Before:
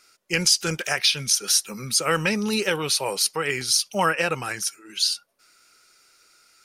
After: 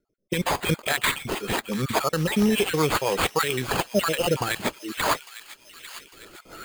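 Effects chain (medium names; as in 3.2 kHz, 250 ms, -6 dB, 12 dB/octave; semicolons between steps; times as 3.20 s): random holes in the spectrogram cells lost 36%; recorder AGC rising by 17 dB/s; 1.59–2.38 s: treble shelf 4.3 kHz -5 dB; level-controlled noise filter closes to 350 Hz, open at -20 dBFS; peak limiter -15.5 dBFS, peak gain reduction 8.5 dB; rotary cabinet horn 0.9 Hz, later 7 Hz, at 1.96 s; sample-rate reducer 5.7 kHz, jitter 0%; feedback echo behind a high-pass 851 ms, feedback 53%, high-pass 2 kHz, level -12 dB; trim +5.5 dB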